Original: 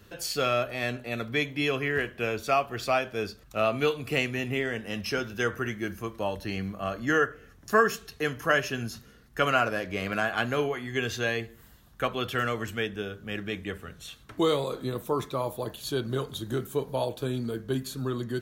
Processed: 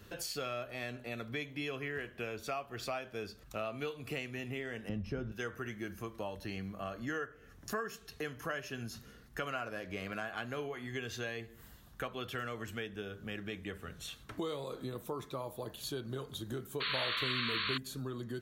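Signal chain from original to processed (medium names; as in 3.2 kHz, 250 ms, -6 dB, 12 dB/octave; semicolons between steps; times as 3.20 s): 4.89–5.32 s: tilt EQ -4.5 dB/octave; compression 3:1, threshold -39 dBFS, peak gain reduction 17 dB; 16.80–17.78 s: painted sound noise 980–4500 Hz -35 dBFS; trim -1 dB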